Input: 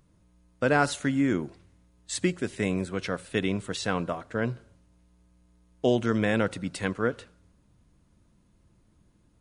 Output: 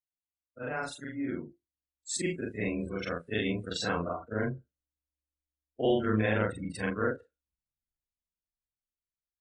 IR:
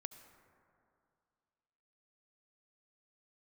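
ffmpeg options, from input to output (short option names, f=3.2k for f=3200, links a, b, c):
-af "afftfilt=real='re':imag='-im':win_size=4096:overlap=0.75,afftdn=nr=36:nf=-41,highshelf=f=3.6k:g=8,dynaudnorm=f=430:g=9:m=11dB,asubboost=boost=3:cutoff=73,volume=-8.5dB"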